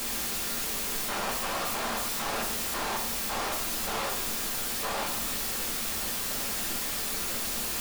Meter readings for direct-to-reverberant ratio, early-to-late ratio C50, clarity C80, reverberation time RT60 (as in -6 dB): -1.0 dB, 7.0 dB, 10.5 dB, 0.75 s